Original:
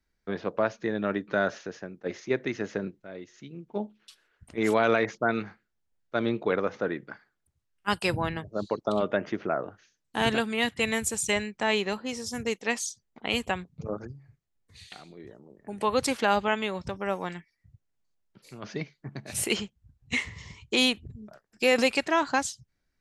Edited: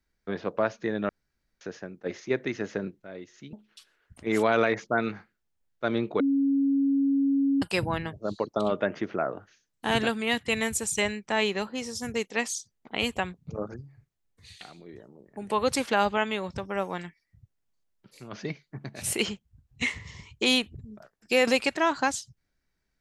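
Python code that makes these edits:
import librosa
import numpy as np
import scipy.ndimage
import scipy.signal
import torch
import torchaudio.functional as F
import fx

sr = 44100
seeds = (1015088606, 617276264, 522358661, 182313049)

y = fx.edit(x, sr, fx.room_tone_fill(start_s=1.09, length_s=0.52),
    fx.cut(start_s=3.53, length_s=0.31),
    fx.bleep(start_s=6.51, length_s=1.42, hz=276.0, db=-20.5), tone=tone)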